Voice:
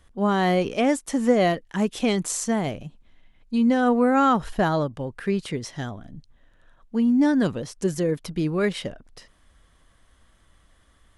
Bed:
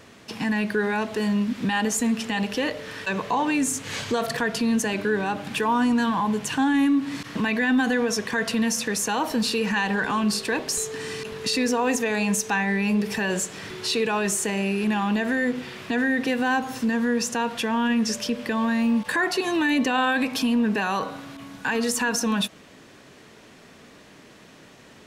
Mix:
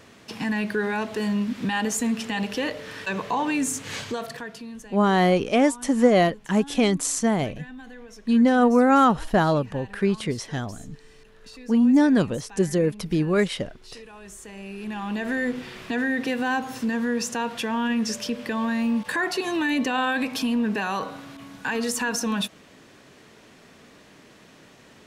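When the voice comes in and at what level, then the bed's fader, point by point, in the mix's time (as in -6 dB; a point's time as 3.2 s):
4.75 s, +2.0 dB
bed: 3.95 s -1.5 dB
4.94 s -21 dB
14.16 s -21 dB
15.34 s -2 dB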